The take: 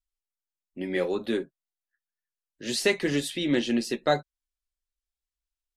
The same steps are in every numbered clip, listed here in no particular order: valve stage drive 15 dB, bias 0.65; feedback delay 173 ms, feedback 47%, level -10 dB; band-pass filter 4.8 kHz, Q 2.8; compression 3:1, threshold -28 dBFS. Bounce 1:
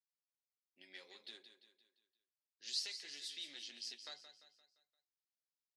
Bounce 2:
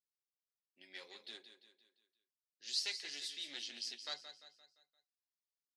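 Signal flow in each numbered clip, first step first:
compression > feedback delay > valve stage > band-pass filter; feedback delay > valve stage > band-pass filter > compression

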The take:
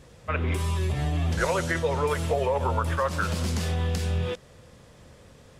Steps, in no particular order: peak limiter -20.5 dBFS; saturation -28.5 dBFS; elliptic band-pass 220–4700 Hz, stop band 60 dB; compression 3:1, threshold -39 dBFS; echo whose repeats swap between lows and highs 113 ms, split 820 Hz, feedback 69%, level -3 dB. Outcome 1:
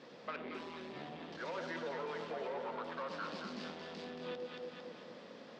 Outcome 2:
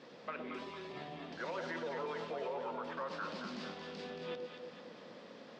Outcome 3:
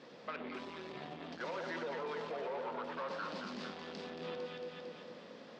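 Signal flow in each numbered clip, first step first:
peak limiter > saturation > echo whose repeats swap between lows and highs > compression > elliptic band-pass; peak limiter > compression > echo whose repeats swap between lows and highs > saturation > elliptic band-pass; echo whose repeats swap between lows and highs > peak limiter > saturation > compression > elliptic band-pass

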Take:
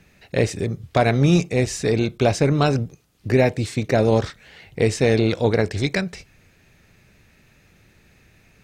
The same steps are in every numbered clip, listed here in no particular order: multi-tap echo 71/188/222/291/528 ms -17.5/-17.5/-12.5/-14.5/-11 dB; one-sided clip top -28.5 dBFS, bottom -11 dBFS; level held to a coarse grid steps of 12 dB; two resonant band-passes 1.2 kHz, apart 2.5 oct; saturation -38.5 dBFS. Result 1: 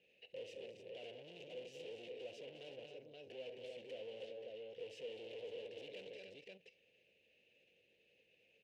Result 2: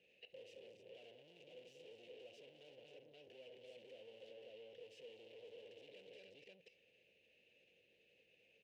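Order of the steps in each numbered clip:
multi-tap echo > level held to a coarse grid > one-sided clip > saturation > two resonant band-passes; multi-tap echo > one-sided clip > saturation > level held to a coarse grid > two resonant band-passes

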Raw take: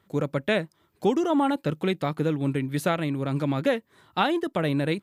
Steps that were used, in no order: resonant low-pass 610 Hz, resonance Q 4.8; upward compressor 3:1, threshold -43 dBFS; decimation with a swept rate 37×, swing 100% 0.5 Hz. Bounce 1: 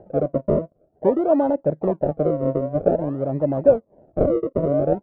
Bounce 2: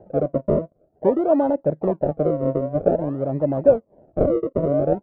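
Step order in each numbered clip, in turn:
decimation with a swept rate > upward compressor > resonant low-pass; upward compressor > decimation with a swept rate > resonant low-pass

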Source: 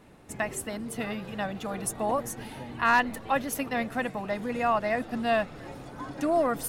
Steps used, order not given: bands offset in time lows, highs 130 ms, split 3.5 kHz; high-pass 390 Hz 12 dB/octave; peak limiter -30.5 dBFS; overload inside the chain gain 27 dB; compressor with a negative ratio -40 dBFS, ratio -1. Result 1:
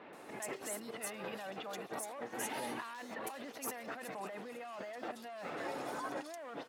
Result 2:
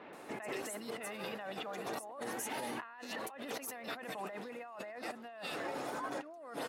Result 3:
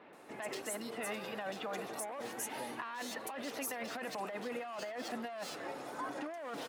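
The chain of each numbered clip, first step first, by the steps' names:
overload inside the chain > compressor with a negative ratio > high-pass > peak limiter > bands offset in time; bands offset in time > compressor with a negative ratio > high-pass > peak limiter > overload inside the chain; overload inside the chain > bands offset in time > peak limiter > high-pass > compressor with a negative ratio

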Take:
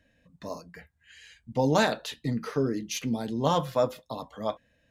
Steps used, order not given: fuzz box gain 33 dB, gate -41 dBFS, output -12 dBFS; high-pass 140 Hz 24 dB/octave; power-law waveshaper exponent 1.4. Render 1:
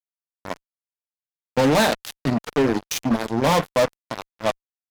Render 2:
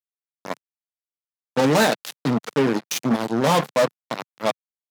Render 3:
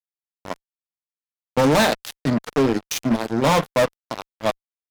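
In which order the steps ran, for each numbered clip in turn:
high-pass > power-law waveshaper > fuzz box; power-law waveshaper > fuzz box > high-pass; power-law waveshaper > high-pass > fuzz box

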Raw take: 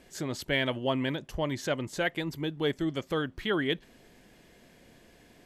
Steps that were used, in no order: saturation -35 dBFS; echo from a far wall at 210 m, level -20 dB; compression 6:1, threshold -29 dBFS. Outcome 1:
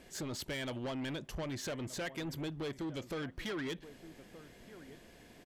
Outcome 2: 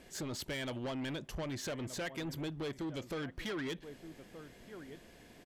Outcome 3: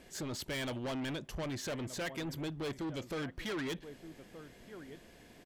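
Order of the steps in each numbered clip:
compression > echo from a far wall > saturation; echo from a far wall > compression > saturation; echo from a far wall > saturation > compression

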